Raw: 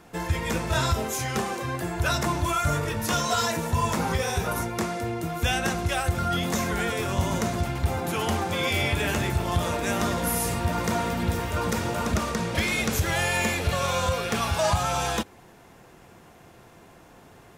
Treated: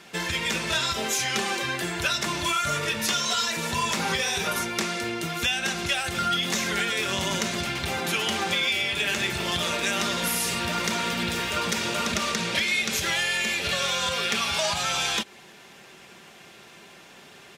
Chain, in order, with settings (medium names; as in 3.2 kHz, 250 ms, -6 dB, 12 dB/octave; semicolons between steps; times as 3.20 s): frequency weighting D; compression, threshold -23 dBFS, peak gain reduction 9.5 dB; comb 5.1 ms, depth 38%